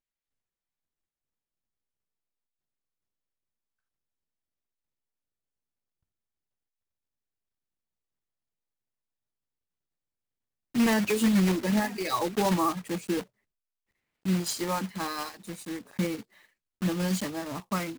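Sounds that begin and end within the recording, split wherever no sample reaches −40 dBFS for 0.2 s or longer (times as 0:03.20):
0:10.75–0:13.22
0:14.25–0:16.21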